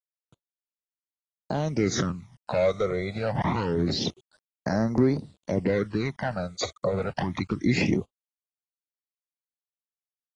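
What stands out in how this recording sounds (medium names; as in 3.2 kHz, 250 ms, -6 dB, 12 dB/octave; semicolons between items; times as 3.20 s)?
a quantiser's noise floor 10-bit, dither none; phasing stages 12, 0.26 Hz, lowest notch 280–3100 Hz; AAC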